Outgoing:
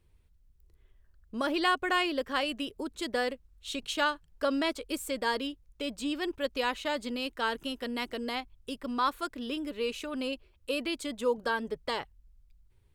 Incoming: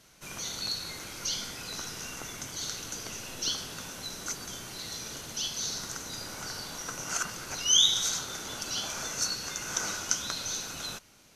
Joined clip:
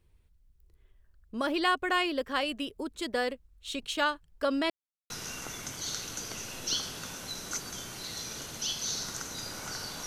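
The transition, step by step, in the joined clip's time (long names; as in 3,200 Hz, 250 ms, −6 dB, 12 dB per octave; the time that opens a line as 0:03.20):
outgoing
0:04.70–0:05.10: silence
0:05.10: continue with incoming from 0:01.85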